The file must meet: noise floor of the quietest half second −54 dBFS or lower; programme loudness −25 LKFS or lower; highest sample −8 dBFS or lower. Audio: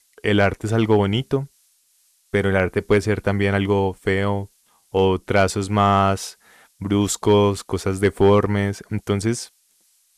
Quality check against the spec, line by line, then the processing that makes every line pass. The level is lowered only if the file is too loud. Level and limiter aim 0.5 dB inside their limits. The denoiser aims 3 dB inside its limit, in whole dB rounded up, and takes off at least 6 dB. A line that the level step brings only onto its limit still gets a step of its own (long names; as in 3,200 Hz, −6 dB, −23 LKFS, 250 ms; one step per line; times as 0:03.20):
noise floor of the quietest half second −62 dBFS: in spec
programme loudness −20.0 LKFS: out of spec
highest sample −4.5 dBFS: out of spec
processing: level −5.5 dB